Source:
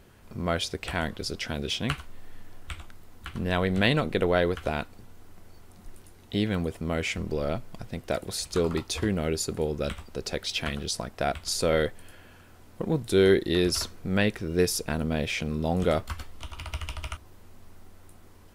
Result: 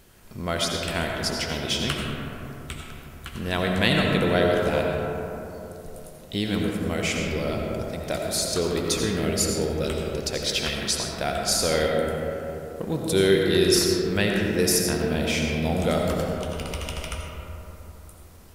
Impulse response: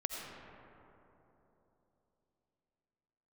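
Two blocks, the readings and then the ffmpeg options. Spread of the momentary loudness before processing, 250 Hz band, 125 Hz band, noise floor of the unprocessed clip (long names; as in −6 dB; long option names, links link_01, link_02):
16 LU, +3.5 dB, +2.5 dB, −52 dBFS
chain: -filter_complex "[0:a]highshelf=frequency=3600:gain=10[link_01];[1:a]atrim=start_sample=2205[link_02];[link_01][link_02]afir=irnorm=-1:irlink=0"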